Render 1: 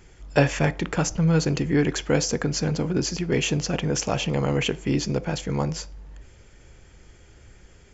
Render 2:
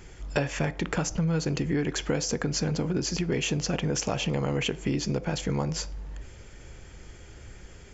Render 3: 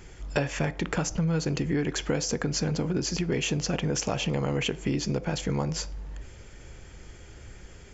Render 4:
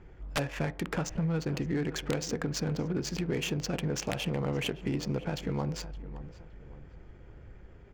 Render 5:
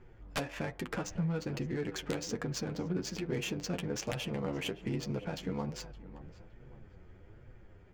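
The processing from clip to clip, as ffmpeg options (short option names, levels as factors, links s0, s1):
-af "acompressor=threshold=0.0355:ratio=5,volume=1.58"
-af anull
-filter_complex "[0:a]aeval=exprs='(mod(5.96*val(0)+1,2)-1)/5.96':c=same,adynamicsmooth=sensitivity=7:basefreq=1500,asplit=2[s0][s1];[s1]adelay=566,lowpass=f=1900:p=1,volume=0.188,asplit=2[s2][s3];[s3]adelay=566,lowpass=f=1900:p=1,volume=0.39,asplit=2[s4][s5];[s5]adelay=566,lowpass=f=1900:p=1,volume=0.39,asplit=2[s6][s7];[s7]adelay=566,lowpass=f=1900:p=1,volume=0.39[s8];[s0][s2][s4][s6][s8]amix=inputs=5:normalize=0,volume=0.631"
-af "flanger=delay=7.8:depth=3.6:regen=22:speed=1.2:shape=triangular"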